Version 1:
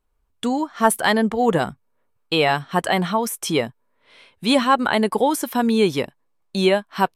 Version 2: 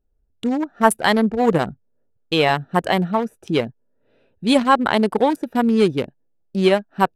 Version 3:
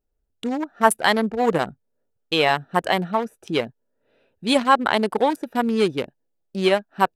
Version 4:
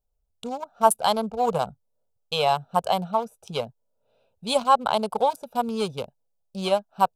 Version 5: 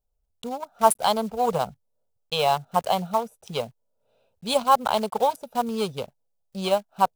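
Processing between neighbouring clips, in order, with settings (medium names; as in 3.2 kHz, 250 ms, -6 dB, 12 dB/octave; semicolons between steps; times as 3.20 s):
local Wiener filter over 41 samples; trim +2.5 dB
bass shelf 310 Hz -8.5 dB
static phaser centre 770 Hz, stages 4
block-companded coder 5-bit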